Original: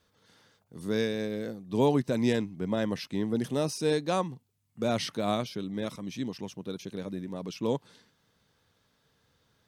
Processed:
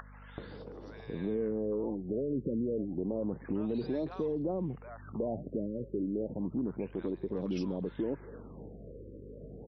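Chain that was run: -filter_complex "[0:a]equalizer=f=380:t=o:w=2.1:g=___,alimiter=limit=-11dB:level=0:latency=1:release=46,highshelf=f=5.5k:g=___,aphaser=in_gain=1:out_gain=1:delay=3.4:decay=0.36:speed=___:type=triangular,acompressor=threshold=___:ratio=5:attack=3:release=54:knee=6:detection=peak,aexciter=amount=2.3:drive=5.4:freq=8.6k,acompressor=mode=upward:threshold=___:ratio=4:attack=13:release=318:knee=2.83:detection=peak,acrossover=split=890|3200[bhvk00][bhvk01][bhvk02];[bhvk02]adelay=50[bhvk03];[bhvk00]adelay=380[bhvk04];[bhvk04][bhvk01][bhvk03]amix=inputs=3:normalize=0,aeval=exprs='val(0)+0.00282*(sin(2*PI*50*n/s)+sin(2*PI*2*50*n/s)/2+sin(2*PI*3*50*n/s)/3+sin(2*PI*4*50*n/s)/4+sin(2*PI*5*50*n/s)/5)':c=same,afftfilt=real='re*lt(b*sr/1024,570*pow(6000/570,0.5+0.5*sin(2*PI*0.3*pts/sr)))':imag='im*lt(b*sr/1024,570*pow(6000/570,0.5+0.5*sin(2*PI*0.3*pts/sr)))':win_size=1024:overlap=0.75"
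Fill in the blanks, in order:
13.5, -9.5, 0.97, -31dB, -38dB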